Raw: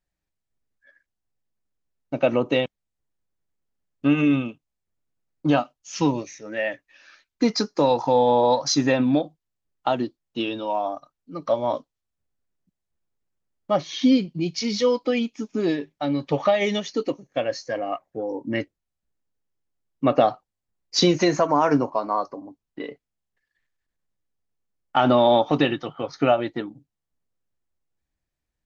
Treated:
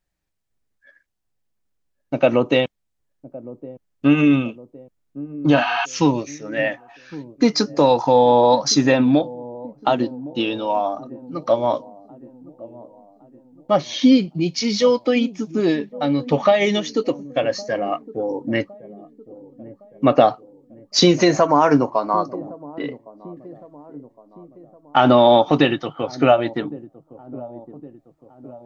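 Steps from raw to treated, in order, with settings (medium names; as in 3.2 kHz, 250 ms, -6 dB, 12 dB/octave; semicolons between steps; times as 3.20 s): spectral replace 5.59–5.82 s, 710–6300 Hz before; feedback echo behind a low-pass 1112 ms, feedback 48%, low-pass 510 Hz, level -16 dB; trim +4.5 dB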